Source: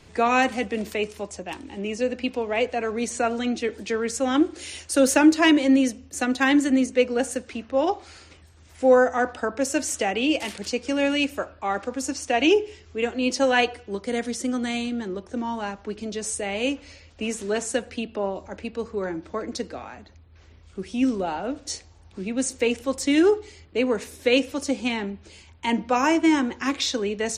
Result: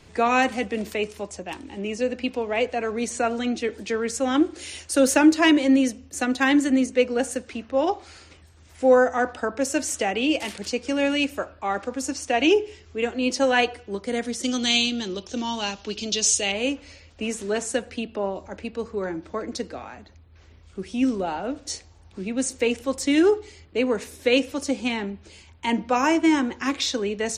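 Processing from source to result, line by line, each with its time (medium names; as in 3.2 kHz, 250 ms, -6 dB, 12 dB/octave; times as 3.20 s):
14.43–16.52 s: high-order bell 4.3 kHz +15 dB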